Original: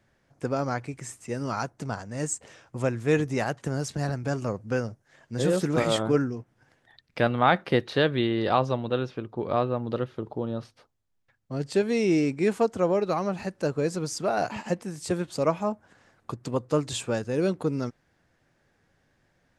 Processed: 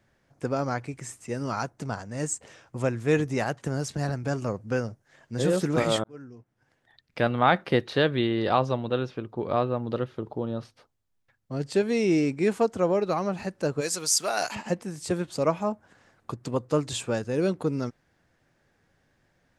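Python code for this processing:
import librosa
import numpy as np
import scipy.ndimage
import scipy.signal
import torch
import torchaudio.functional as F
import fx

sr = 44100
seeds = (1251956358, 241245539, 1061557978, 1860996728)

y = fx.tilt_eq(x, sr, slope=4.5, at=(13.8, 14.54), fade=0.02)
y = fx.edit(y, sr, fx.fade_in_span(start_s=6.04, length_s=1.34), tone=tone)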